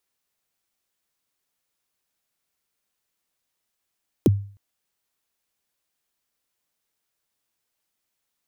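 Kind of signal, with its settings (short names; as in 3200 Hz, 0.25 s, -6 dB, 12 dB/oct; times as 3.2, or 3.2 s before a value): kick drum length 0.31 s, from 450 Hz, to 100 Hz, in 27 ms, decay 0.44 s, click on, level -9.5 dB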